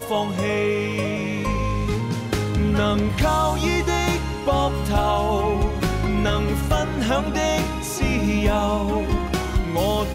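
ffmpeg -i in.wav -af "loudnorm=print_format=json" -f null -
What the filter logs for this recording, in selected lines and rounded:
"input_i" : "-22.2",
"input_tp" : "-10.2",
"input_lra" : "0.9",
"input_thresh" : "-32.2",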